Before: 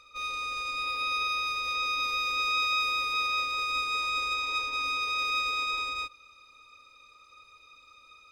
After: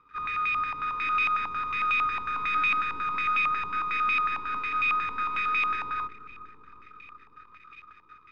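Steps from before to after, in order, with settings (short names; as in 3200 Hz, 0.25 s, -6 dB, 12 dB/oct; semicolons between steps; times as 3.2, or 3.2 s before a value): CVSD 32 kbps; sample leveller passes 2; Butterworth band-stop 680 Hz, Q 0.99; on a send: dark delay 0.368 s, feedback 67%, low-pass 720 Hz, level -9.5 dB; on the sum: stepped low-pass 11 Hz 910–2300 Hz; gain -5.5 dB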